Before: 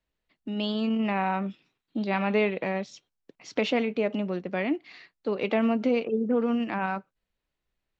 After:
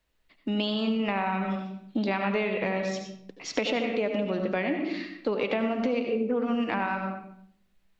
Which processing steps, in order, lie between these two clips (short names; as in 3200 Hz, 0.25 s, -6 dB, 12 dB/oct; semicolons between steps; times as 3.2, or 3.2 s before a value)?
low shelf 340 Hz -7 dB; reverb RT60 0.65 s, pre-delay 72 ms, DRR 5 dB; compressor, threshold -33 dBFS, peak gain reduction 11 dB; low shelf 110 Hz +7.5 dB; gain +8 dB